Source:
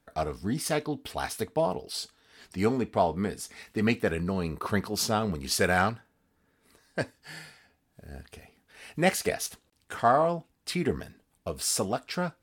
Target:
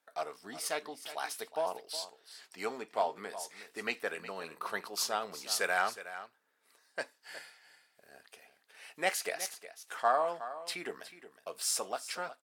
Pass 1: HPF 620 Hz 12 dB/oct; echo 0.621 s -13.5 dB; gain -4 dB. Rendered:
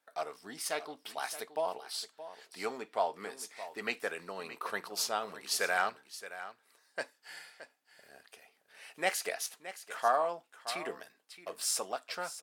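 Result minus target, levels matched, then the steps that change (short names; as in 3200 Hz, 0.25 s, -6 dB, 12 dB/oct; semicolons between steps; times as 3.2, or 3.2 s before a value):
echo 0.256 s late
change: echo 0.365 s -13.5 dB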